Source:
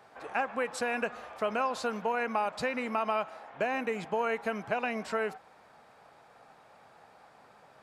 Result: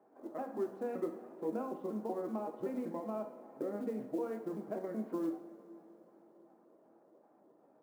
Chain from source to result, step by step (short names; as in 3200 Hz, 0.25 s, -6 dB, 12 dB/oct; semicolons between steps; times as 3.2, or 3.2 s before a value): trilling pitch shifter -4.5 st, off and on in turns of 0.19 s; ladder band-pass 320 Hz, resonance 50%; short-mantissa float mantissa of 4-bit; two-slope reverb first 0.53 s, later 4.5 s, from -18 dB, DRR 3.5 dB; gain +5.5 dB